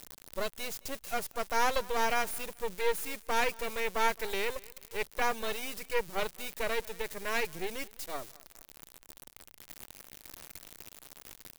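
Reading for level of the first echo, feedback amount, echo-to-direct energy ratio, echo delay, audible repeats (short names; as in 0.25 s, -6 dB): -23.0 dB, 27%, -22.5 dB, 0.217 s, 2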